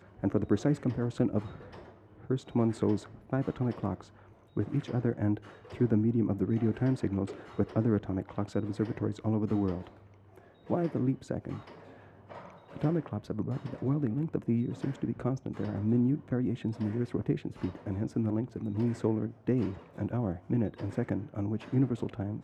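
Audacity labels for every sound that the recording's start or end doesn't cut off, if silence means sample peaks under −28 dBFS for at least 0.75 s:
2.310000	9.750000	sound
10.700000	11.540000	sound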